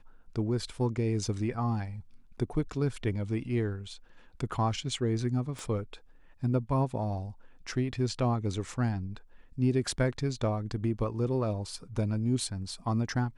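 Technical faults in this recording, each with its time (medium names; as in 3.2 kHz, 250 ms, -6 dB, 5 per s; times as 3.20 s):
5.59 s: pop -26 dBFS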